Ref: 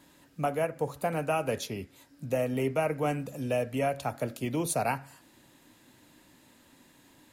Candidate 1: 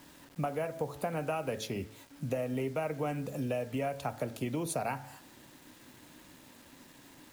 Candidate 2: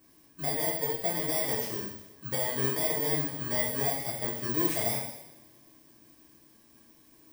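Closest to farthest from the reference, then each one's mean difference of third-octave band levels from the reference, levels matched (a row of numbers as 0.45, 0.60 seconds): 1, 2; 5.5, 8.5 decibels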